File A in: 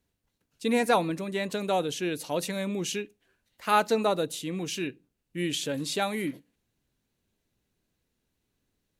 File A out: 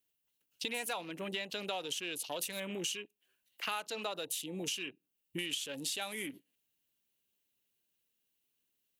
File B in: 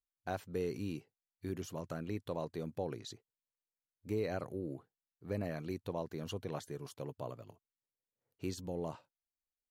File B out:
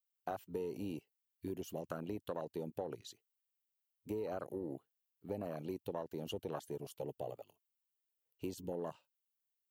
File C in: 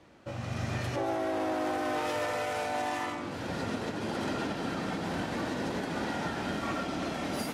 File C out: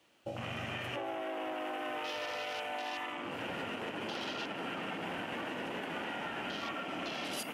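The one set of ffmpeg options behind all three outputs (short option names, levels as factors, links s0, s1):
-filter_complex "[0:a]aemphasis=mode=production:type=bsi,afwtdn=0.00891,equalizer=f=2900:t=o:w=0.45:g=10,acrossover=split=510|1800[s0][s1][s2];[s0]alimiter=level_in=2.66:limit=0.0631:level=0:latency=1,volume=0.376[s3];[s3][s1][s2]amix=inputs=3:normalize=0,acompressor=threshold=0.00794:ratio=6,asplit=2[s4][s5];[s5]asoftclip=type=tanh:threshold=0.0141,volume=0.282[s6];[s4][s6]amix=inputs=2:normalize=0,volume=1.5"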